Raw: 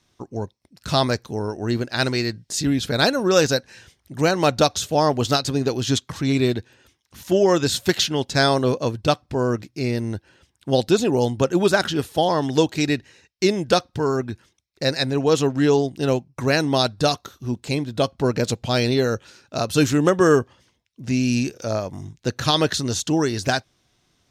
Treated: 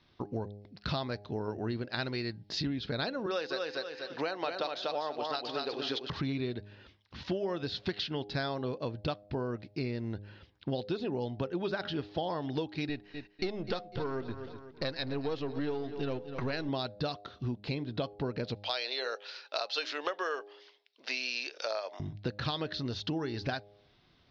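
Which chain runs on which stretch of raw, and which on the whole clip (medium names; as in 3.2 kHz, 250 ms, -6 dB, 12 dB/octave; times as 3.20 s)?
3.26–6.10 s: high-pass 460 Hz + feedback delay 244 ms, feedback 23%, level -4.5 dB
12.89–16.69 s: partial rectifier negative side -7 dB + feedback delay 249 ms, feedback 39%, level -17 dB
18.56–22.00 s: high-pass 510 Hz 24 dB/octave + treble shelf 2.6 kHz +10.5 dB
whole clip: steep low-pass 4.8 kHz 48 dB/octave; de-hum 102.4 Hz, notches 8; compression 6:1, threshold -32 dBFS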